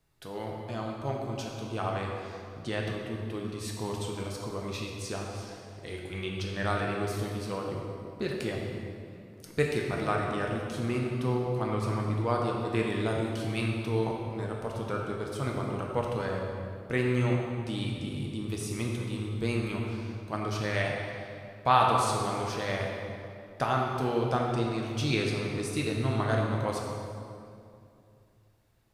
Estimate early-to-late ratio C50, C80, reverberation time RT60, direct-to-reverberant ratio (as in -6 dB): 0.5 dB, 2.0 dB, 2.5 s, -1.5 dB